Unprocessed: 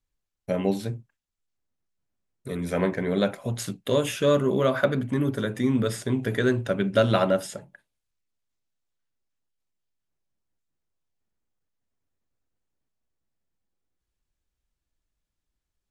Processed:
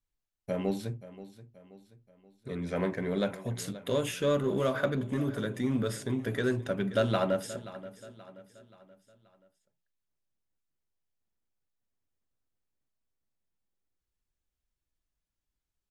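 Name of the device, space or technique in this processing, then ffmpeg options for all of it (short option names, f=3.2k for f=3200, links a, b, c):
parallel distortion: -filter_complex "[0:a]asettb=1/sr,asplit=3[a][b][c];[a]atrim=end=0.934[d];[b]atrim=start=0.93:end=2.76,asetpts=PTS-STARTPTS,afade=t=in:d=0.004:c=qsin,afade=t=out:st=1.826:d=0.004:c=qsin,lowpass=5.5k[e];[c]atrim=start=2.756[f];[d][e]acrossfade=d=0.004:c1=hsin:c2=qsin[g];[g][f]acrossfade=d=0.004:c1=qsin:c2=hsin,asplit=2[h][i];[i]asoftclip=type=hard:threshold=-25dB,volume=-10dB[j];[h][j]amix=inputs=2:normalize=0,aecho=1:1:529|1058|1587|2116:0.158|0.0713|0.0321|0.0144,volume=-7.5dB"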